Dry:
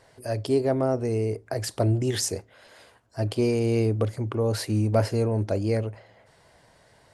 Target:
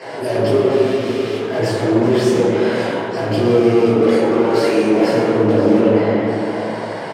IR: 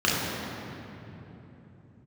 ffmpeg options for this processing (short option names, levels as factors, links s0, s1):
-filter_complex "[0:a]asettb=1/sr,asplit=3[s0][s1][s2];[s0]atrim=end=3.844[s3];[s1]atrim=start=3.84:end=5.08,asetpts=PTS-STARTPTS,afade=t=in:d=0.004:c=qsin,afade=t=out:st=1.236:d=0.004:c=qsin,highpass=580[s4];[s2]atrim=start=5.076[s5];[s3][s4]acrossfade=d=0.004:c1=hsin:c2=qsin[s6];[s6][s5]acrossfade=d=0.004:c1=qsin:c2=hsin,asplit=2[s7][s8];[s8]highpass=f=720:p=1,volume=100,asoftclip=type=tanh:threshold=0.299[s9];[s7][s9]amix=inputs=2:normalize=0,lowpass=f=1200:p=1,volume=0.501,alimiter=limit=0.15:level=0:latency=1,asettb=1/sr,asplit=3[s10][s11][s12];[s10]atrim=end=0.704[s13];[s11]atrim=start=0.7:end=1.47,asetpts=PTS-STARTPTS,afade=t=in:d=0.004:c=qsin,afade=t=out:st=0.766:d=0.004:c=qsin,aeval=exprs='0.0473*(abs(mod(val(0)/0.0473+3,4)-2)-1)':c=same[s14];[s12]atrim=start=1.466[s15];[s13][s14]acrossfade=d=0.004:c1=hsin:c2=qsin[s16];[s16][s15]acrossfade=d=0.004:c1=qsin:c2=hsin,aecho=1:1:535:0.168[s17];[1:a]atrim=start_sample=2205,asetrate=79380,aresample=44100[s18];[s17][s18]afir=irnorm=-1:irlink=0,volume=0.316"